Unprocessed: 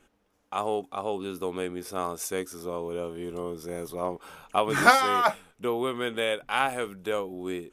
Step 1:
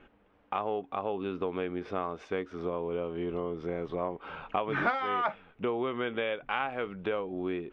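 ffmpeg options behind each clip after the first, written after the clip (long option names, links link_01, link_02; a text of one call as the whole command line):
ffmpeg -i in.wav -af "acompressor=threshold=-37dB:ratio=3,lowpass=frequency=3000:width=0.5412,lowpass=frequency=3000:width=1.3066,volume=6dB" out.wav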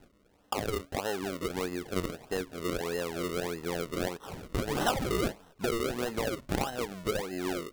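ffmpeg -i in.wav -af "acrusher=samples=37:mix=1:aa=0.000001:lfo=1:lforange=37:lforate=1.6" out.wav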